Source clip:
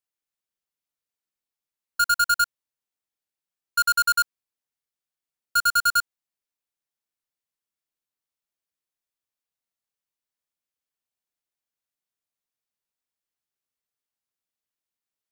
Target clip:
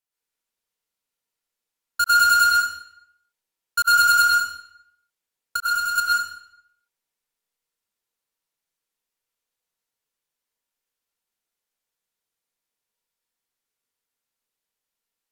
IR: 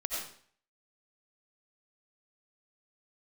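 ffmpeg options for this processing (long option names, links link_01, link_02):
-filter_complex "[0:a]asettb=1/sr,asplit=3[link_01][link_02][link_03];[link_01]atrim=end=5.564[link_04];[link_02]atrim=start=5.56:end=5.98,asetpts=PTS-STARTPTS,afade=type=in:duration=0.004:curve=qsin,afade=type=out:start_time=0.416:duration=0.004:curve=qsin,acompressor=threshold=-31dB:ratio=3[link_05];[link_03]atrim=start=5.976[link_06];[link_04][link_05]acrossfade=duration=0.004:curve1=hsin:curve2=qsin[link_07];[link_07][link_06]acrossfade=duration=0.004:curve1=qsin:curve2=hsin[link_08];[1:a]atrim=start_sample=2205,asetrate=32193,aresample=44100[link_09];[link_08][link_09]afir=irnorm=-1:irlink=0"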